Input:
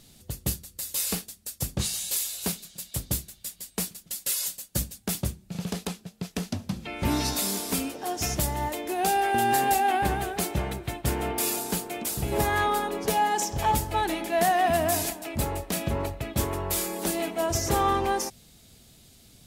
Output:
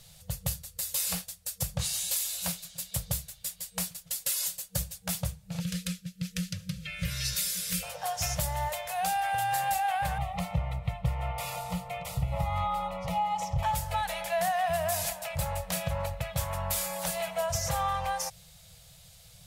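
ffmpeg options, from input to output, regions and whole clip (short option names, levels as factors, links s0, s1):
-filter_complex "[0:a]asettb=1/sr,asplit=3[s0][s1][s2];[s0]atrim=end=5.604[s3];[s1]atrim=start=5.6:end=7.83,asetpts=PTS-STARTPTS,afade=t=in:d=0.004:c=qsin,afade=t=out:st=2.226:d=0.004:c=qsin,asuperstop=centerf=820:order=4:qfactor=0.7,aecho=1:1:5.6:0.4,atrim=end_sample=98343[s4];[s2]atrim=start=7.826[s5];[s3][s4]acrossfade=d=0.004:c1=hsin:c2=qsin[s6];[s6][s5]acrossfade=d=0.004:c1=qsin:c2=hsin,asettb=1/sr,asplit=3[s7][s8][s9];[s7]atrim=end=10.184[s10];[s8]atrim=start=10.18:end=13.63,asetpts=PTS-STARTPTS,afade=t=in:d=0.004:c=qsin,afade=t=out:st=3.446:d=0.004:c=qsin,asuperstop=centerf=1600:order=20:qfactor=4.7,bass=f=250:g=7,treble=f=4000:g=-14[s11];[s9]atrim=start=13.626[s12];[s10][s11]acrossfade=d=0.004:c1=hsin:c2=qsin[s13];[s13][s12]acrossfade=d=0.004:c1=qsin:c2=hsin,acompressor=threshold=0.0398:ratio=3,afftfilt=real='re*(1-between(b*sr/4096,190,470))':imag='im*(1-between(b*sr/4096,190,470))':win_size=4096:overlap=0.75,volume=1.12"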